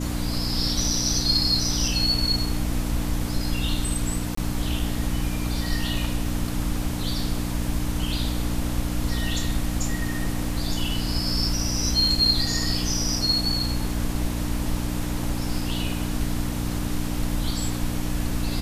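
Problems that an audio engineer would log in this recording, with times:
hum 60 Hz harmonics 5 -29 dBFS
4.35–4.37 gap 24 ms

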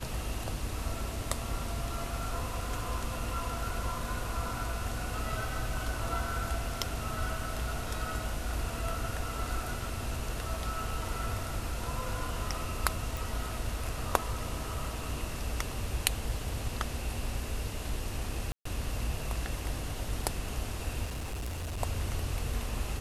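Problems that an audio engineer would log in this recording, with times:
13.17 pop
18.52–18.65 gap 0.134 s
21.06–21.8 clipped -33 dBFS

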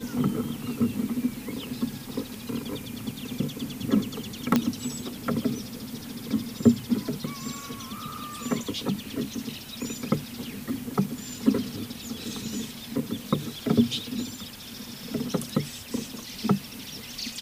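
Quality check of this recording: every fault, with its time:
4.56 pop -7 dBFS

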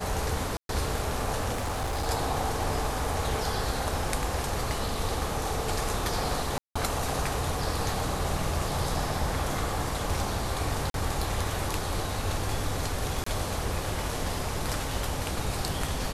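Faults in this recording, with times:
0.57–0.69 gap 0.122 s
1.53–2.08 clipped -26.5 dBFS
6.58–6.75 gap 0.175 s
10.9–10.94 gap 42 ms
13.24–13.26 gap 24 ms

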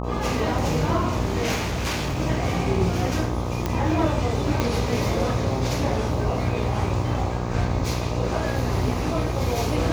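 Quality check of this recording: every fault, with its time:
buzz 60 Hz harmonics 21 -28 dBFS
1.54–2.19 clipped -22 dBFS
3.66 pop -10 dBFS
4.6 pop -9 dBFS

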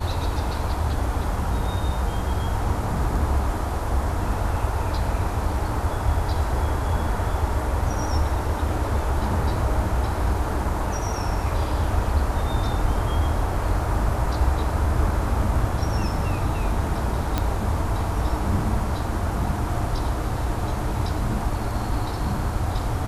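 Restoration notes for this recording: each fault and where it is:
17.38 pop -9 dBFS

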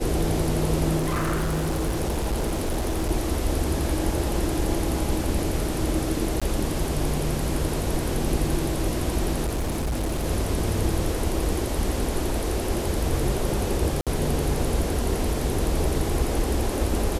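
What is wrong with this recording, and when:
0.98–3.11 clipped -21 dBFS
6.4–6.42 gap 16 ms
9.45–10.26 clipped -22.5 dBFS
14.01–14.07 gap 57 ms

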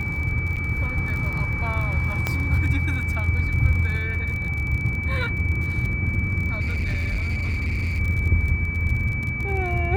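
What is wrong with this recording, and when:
crackle 43/s -29 dBFS
tone 2300 Hz -28 dBFS
0.56–0.57 gap 7.3 ms
2.27 pop -9 dBFS
6.6–8 clipped -21 dBFS

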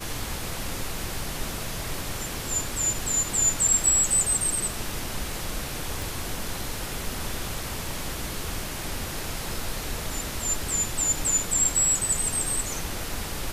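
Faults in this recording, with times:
6.02 pop

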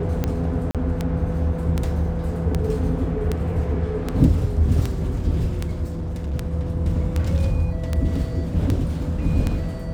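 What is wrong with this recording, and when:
tick 78 rpm -10 dBFS
0.71–0.75 gap 37 ms
5.91–6.34 clipped -23.5 dBFS

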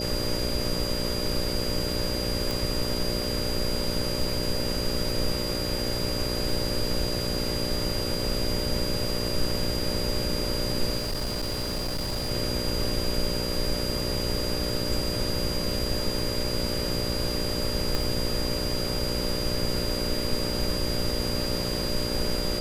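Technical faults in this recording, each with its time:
buzz 60 Hz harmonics 10 -32 dBFS
crackle 12/s -32 dBFS
tone 4800 Hz -32 dBFS
2.51 pop
10.97–12.31 clipped -25.5 dBFS
17.95 pop

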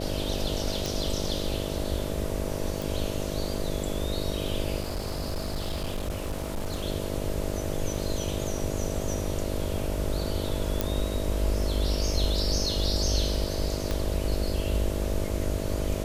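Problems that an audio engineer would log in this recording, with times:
buzz 50 Hz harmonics 13 -33 dBFS
0.86 pop
2.82 pop
4.8–6.84 clipped -26.5 dBFS
10.81 pop -9 dBFS
13.91 pop -15 dBFS

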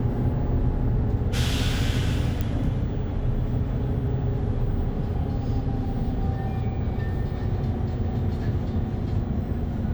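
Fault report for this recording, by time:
2.41 pop -14 dBFS

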